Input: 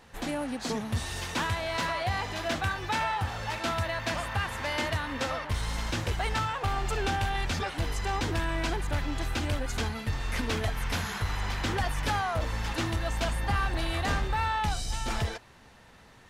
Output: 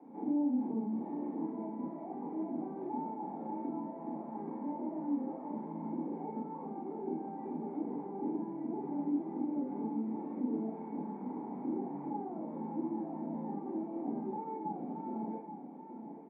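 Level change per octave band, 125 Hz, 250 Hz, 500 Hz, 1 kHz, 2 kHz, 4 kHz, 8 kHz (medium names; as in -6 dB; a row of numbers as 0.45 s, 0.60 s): -19.0 dB, +2.5 dB, -6.5 dB, -10.5 dB, under -35 dB, under -40 dB, under -40 dB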